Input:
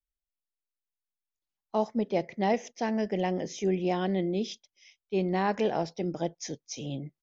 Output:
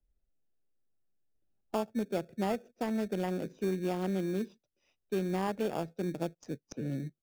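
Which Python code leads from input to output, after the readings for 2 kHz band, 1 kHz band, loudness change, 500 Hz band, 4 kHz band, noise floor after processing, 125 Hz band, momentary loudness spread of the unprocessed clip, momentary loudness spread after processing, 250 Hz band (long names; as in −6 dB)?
−6.0 dB, −7.0 dB, −4.5 dB, −5.0 dB, −7.5 dB, −85 dBFS, −2.5 dB, 10 LU, 6 LU, −3.0 dB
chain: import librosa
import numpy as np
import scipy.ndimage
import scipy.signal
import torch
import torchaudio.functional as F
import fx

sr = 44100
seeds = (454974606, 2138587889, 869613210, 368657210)

p1 = fx.wiener(x, sr, points=41)
p2 = fx.sample_hold(p1, sr, seeds[0], rate_hz=2000.0, jitter_pct=0)
p3 = p1 + F.gain(torch.from_numpy(p2), -7.0).numpy()
p4 = fx.band_squash(p3, sr, depth_pct=70)
y = F.gain(torch.from_numpy(p4), -6.5).numpy()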